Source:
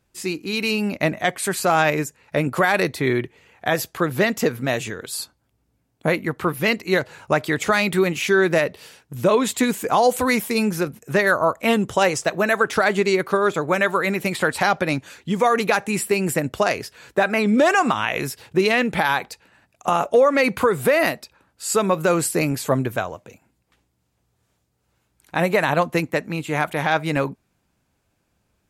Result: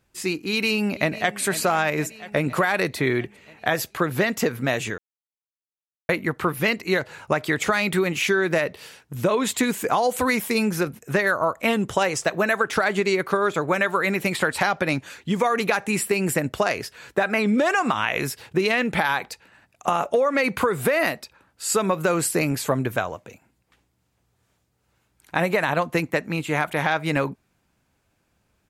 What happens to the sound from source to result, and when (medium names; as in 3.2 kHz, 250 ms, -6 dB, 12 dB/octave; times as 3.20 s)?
0.45–1.40 s: echo throw 490 ms, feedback 65%, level -16.5 dB
4.98–6.09 s: mute
whole clip: peaking EQ 1.8 kHz +2.5 dB 1.8 oct; compression, threshold -17 dBFS